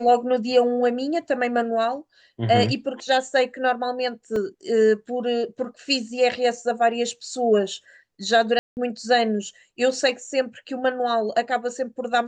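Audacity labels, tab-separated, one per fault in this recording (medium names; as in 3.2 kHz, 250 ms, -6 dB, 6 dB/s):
4.360000	4.360000	dropout 2.4 ms
8.590000	8.770000	dropout 179 ms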